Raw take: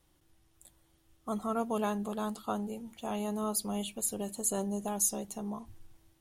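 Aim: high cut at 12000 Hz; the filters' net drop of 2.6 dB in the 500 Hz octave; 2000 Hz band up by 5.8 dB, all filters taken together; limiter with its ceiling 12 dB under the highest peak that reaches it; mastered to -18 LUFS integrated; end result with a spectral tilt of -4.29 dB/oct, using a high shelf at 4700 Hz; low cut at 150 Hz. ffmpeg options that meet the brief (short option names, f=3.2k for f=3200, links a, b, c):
-af "highpass=150,lowpass=12k,equalizer=f=500:t=o:g=-4,equalizer=f=2k:t=o:g=8,highshelf=f=4.7k:g=3,volume=19dB,alimiter=limit=-7dB:level=0:latency=1"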